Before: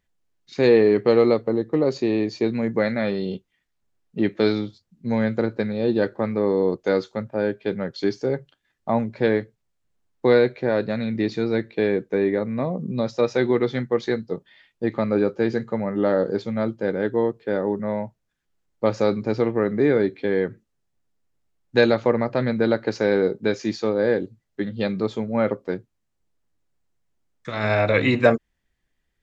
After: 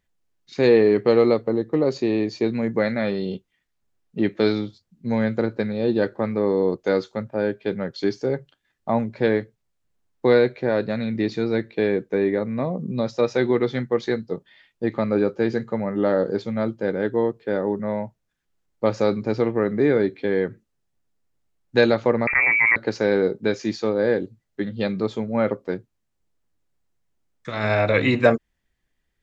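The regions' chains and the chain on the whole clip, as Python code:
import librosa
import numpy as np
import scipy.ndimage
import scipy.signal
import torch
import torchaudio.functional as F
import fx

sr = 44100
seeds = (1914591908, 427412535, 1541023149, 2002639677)

y = fx.chain(x, sr, fx.freq_invert(carrier_hz=2500),
    fx.env_flatten(amount_pct=70), at=(22.27, 22.76))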